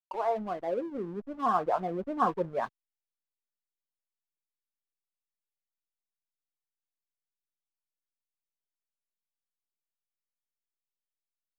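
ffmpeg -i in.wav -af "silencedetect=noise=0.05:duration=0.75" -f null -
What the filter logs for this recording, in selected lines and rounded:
silence_start: 2.64
silence_end: 11.58 | silence_duration: 8.94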